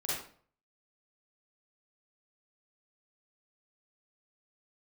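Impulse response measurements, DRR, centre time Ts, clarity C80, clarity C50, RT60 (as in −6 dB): −8.0 dB, 65 ms, 4.0 dB, −3.0 dB, 0.50 s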